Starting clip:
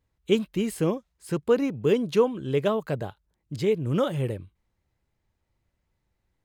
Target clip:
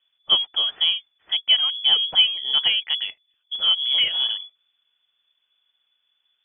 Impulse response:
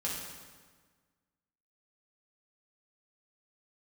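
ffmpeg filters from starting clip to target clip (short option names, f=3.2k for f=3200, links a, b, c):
-filter_complex "[0:a]asplit=2[a][b];[b]volume=28dB,asoftclip=hard,volume=-28dB,volume=-11dB[c];[a][c]amix=inputs=2:normalize=0,lowpass=f=3k:t=q:w=0.5098,lowpass=f=3k:t=q:w=0.6013,lowpass=f=3k:t=q:w=0.9,lowpass=f=3k:t=q:w=2.563,afreqshift=-3500,volume=2.5dB"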